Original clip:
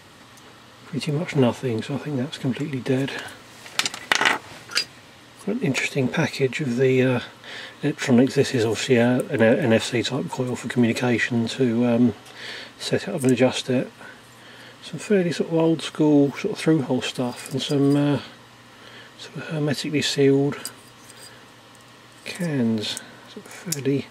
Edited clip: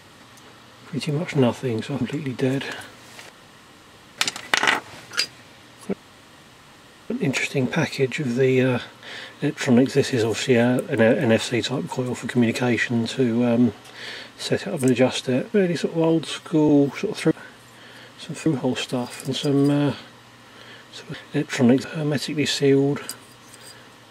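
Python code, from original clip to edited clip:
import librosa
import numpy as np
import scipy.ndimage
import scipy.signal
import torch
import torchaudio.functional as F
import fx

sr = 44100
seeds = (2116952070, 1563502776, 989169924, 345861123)

y = fx.edit(x, sr, fx.cut(start_s=2.01, length_s=0.47),
    fx.insert_room_tone(at_s=3.76, length_s=0.89),
    fx.insert_room_tone(at_s=5.51, length_s=1.17),
    fx.duplicate(start_s=7.63, length_s=0.7, to_s=19.4),
    fx.move(start_s=13.95, length_s=1.15, to_s=16.72),
    fx.stretch_span(start_s=15.8, length_s=0.3, factor=1.5), tone=tone)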